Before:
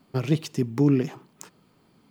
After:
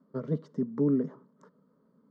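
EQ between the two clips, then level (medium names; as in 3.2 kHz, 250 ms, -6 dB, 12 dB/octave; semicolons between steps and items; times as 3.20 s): band-pass filter 360 Hz, Q 0.71; distance through air 88 m; static phaser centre 510 Hz, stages 8; 0.0 dB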